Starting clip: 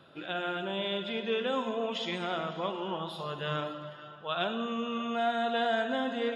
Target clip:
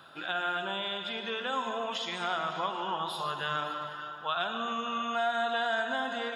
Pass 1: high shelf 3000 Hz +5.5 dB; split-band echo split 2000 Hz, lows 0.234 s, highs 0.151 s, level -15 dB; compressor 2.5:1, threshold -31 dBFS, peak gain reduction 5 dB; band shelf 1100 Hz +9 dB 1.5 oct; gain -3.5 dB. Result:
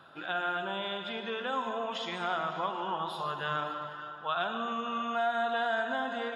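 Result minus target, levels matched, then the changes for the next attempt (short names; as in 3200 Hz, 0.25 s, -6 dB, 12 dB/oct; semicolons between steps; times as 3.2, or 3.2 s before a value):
8000 Hz band -6.0 dB
change: high shelf 3000 Hz +15.5 dB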